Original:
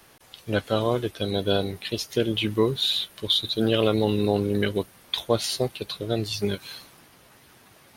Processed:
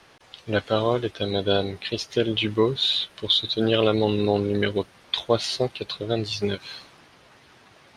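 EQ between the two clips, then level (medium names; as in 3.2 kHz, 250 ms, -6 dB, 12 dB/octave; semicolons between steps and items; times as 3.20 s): low-pass 5.3 kHz 12 dB/octave; bass shelf 86 Hz -5 dB; peaking EQ 210 Hz -2.5 dB 1.5 oct; +2.5 dB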